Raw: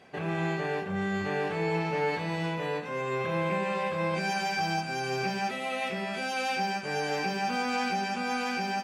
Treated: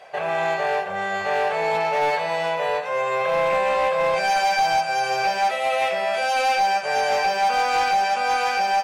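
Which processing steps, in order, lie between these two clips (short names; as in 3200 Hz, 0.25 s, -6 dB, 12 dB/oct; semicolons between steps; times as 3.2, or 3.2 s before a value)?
resonant low shelf 410 Hz -13.5 dB, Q 3; hard clip -23 dBFS, distortion -18 dB; gain +7.5 dB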